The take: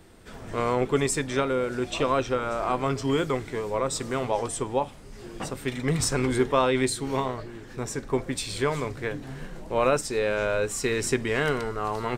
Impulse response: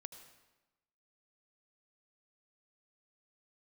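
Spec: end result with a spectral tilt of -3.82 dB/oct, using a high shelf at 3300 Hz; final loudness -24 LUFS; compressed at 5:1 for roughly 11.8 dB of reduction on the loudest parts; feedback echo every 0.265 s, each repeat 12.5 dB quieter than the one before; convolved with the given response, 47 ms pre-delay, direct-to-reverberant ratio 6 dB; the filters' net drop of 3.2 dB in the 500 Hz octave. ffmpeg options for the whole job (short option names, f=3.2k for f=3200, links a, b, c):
-filter_complex "[0:a]equalizer=f=500:t=o:g=-4,highshelf=f=3.3k:g=4,acompressor=threshold=-33dB:ratio=5,aecho=1:1:265|530|795:0.237|0.0569|0.0137,asplit=2[a][b];[1:a]atrim=start_sample=2205,adelay=47[c];[b][c]afir=irnorm=-1:irlink=0,volume=-1dB[d];[a][d]amix=inputs=2:normalize=0,volume=11dB"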